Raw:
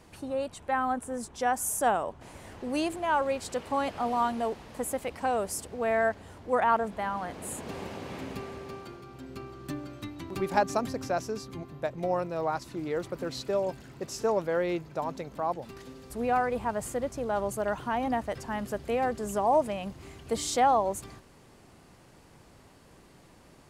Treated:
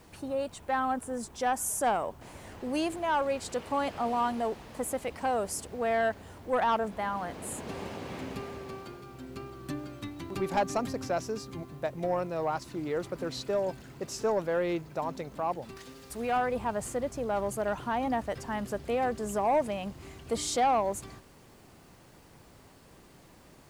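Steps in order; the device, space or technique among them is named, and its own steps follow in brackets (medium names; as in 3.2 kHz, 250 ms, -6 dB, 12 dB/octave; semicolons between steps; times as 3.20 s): compact cassette (saturation -19 dBFS, distortion -18 dB; low-pass 13 kHz; wow and flutter 26 cents; white noise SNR 36 dB); 15.76–16.36 s: tilt shelf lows -4 dB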